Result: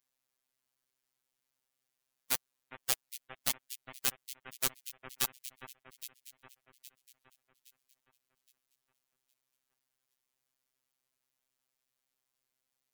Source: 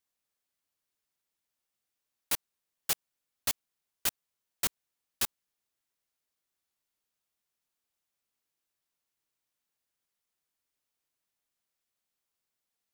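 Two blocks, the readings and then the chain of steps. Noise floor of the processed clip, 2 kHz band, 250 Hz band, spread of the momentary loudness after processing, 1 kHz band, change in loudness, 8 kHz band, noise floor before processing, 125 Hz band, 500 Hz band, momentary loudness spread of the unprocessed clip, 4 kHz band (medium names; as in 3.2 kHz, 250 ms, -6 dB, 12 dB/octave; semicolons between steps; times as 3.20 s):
under -85 dBFS, -0.5 dB, -1.5 dB, 20 LU, -0.5 dB, -2.5 dB, -1.0 dB, under -85 dBFS, 0.0 dB, 0.0 dB, 1 LU, -0.5 dB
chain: echo whose repeats swap between lows and highs 408 ms, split 2.4 kHz, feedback 62%, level -11 dB; robot voice 130 Hz; in parallel at -8 dB: saturation -18 dBFS, distortion -2 dB; on the sum: spectral gate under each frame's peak -20 dB strong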